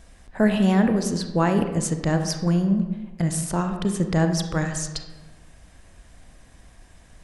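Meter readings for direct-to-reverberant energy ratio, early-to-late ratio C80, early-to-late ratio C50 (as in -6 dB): 6.0 dB, 9.5 dB, 7.5 dB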